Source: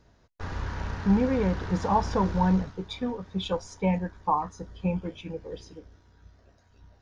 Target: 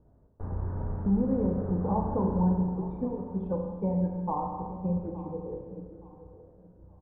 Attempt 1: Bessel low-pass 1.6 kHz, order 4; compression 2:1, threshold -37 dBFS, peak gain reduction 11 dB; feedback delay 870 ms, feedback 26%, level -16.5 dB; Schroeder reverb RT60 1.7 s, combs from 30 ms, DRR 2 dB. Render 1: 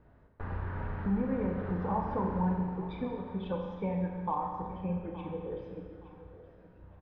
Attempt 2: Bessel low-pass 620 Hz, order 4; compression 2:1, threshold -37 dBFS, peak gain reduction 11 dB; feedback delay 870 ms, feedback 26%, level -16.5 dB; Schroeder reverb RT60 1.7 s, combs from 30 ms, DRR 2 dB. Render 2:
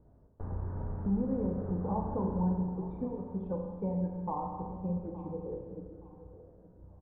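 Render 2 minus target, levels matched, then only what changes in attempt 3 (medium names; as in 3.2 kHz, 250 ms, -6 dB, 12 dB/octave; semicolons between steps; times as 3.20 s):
compression: peak gain reduction +5 dB
change: compression 2:1, threshold -27 dBFS, peak gain reduction 6 dB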